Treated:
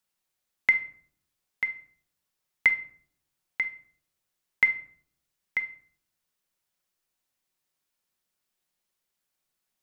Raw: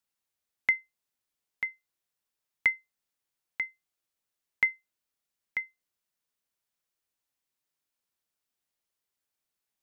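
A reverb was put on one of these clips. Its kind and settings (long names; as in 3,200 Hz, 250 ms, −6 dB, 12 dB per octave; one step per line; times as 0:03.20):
rectangular room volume 800 cubic metres, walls furnished, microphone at 1 metre
level +3.5 dB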